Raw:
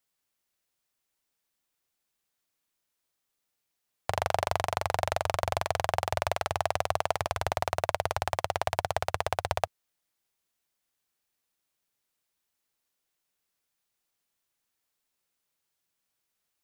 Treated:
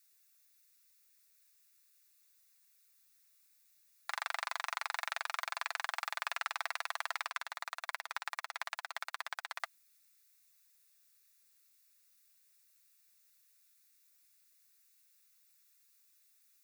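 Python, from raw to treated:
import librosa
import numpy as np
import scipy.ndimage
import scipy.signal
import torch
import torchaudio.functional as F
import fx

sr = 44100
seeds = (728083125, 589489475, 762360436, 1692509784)

y = fx.dmg_noise_colour(x, sr, seeds[0], colour='violet', level_db=-64.0)
y = fx.notch(y, sr, hz=3100.0, q=5.2)
y = np.clip(y, -10.0 ** (-16.5 / 20.0), 10.0 ** (-16.5 / 20.0))
y = scipy.signal.sosfilt(scipy.signal.butter(4, 1300.0, 'highpass', fs=sr, output='sos'), y)
y = fx.high_shelf(y, sr, hz=5600.0, db=-9.5)
y = y + 0.33 * np.pad(y, (int(5.9 * sr / 1000.0), 0))[:len(y)]
y = fx.upward_expand(y, sr, threshold_db=-50.0, expansion=2.5, at=(7.3, 9.6))
y = F.gain(torch.from_numpy(y), 3.0).numpy()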